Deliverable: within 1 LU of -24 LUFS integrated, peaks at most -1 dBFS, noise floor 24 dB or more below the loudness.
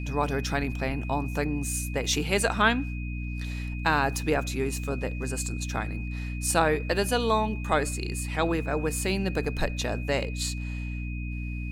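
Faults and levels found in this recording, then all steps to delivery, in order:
hum 60 Hz; highest harmonic 300 Hz; hum level -30 dBFS; steady tone 2.5 kHz; tone level -42 dBFS; loudness -28.0 LUFS; peak level -8.5 dBFS; loudness target -24.0 LUFS
-> hum notches 60/120/180/240/300 Hz; band-stop 2.5 kHz, Q 30; trim +4 dB

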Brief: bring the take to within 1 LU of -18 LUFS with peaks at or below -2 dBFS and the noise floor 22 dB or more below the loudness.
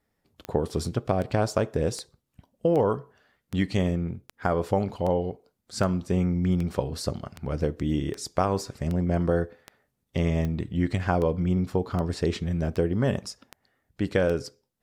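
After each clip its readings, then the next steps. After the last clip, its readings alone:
clicks found 19; loudness -27.5 LUFS; peak level -9.0 dBFS; loudness target -18.0 LUFS
-> de-click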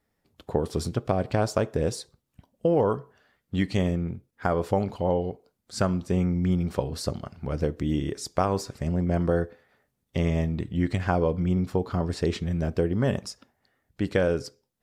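clicks found 0; loudness -27.5 LUFS; peak level -9.0 dBFS; loudness target -18.0 LUFS
-> trim +9.5 dB; peak limiter -2 dBFS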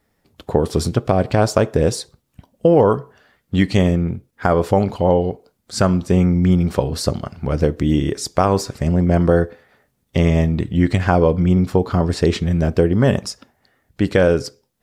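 loudness -18.0 LUFS; peak level -2.0 dBFS; noise floor -68 dBFS

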